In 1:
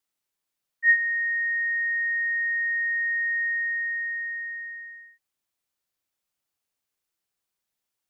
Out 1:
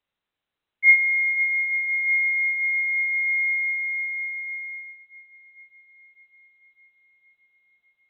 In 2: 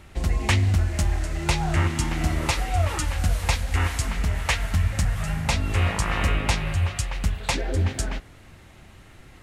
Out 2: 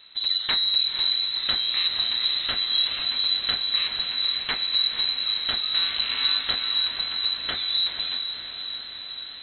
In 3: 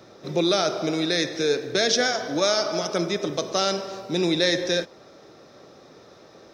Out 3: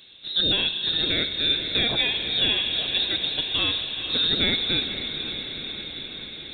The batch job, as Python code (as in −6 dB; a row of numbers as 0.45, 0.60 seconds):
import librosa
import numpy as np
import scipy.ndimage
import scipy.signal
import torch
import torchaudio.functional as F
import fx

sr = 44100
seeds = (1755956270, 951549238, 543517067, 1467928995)

y = fx.freq_invert(x, sr, carrier_hz=4000)
y = fx.echo_diffused(y, sr, ms=503, feedback_pct=72, wet_db=-8.5)
y = y * 10.0 ** (-26 / 20.0) / np.sqrt(np.mean(np.square(y)))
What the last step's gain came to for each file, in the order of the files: +4.5, −4.5, −1.0 decibels